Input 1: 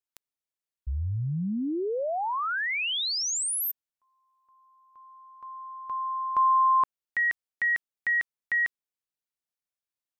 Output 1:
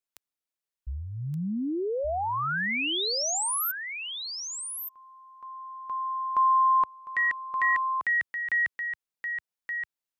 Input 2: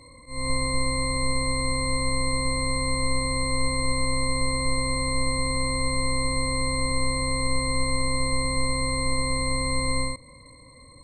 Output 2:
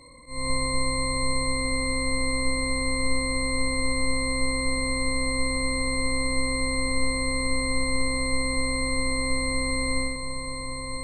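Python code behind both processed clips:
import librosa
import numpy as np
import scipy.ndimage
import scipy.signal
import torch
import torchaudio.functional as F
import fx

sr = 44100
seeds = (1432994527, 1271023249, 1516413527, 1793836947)

p1 = fx.peak_eq(x, sr, hz=93.0, db=-8.0, octaves=0.8)
y = p1 + fx.echo_single(p1, sr, ms=1174, db=-7.0, dry=0)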